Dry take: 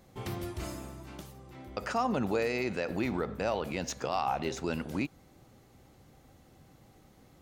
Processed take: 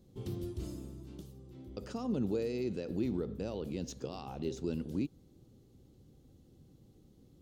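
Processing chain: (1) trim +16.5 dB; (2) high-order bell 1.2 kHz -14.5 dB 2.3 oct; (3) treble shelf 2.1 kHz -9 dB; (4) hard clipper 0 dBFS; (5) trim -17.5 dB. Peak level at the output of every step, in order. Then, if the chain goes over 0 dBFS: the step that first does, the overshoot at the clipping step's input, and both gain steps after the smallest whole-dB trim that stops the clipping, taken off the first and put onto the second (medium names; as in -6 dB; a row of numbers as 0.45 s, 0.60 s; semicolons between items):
-1.5 dBFS, -4.0 dBFS, -4.5 dBFS, -4.5 dBFS, -22.0 dBFS; nothing clips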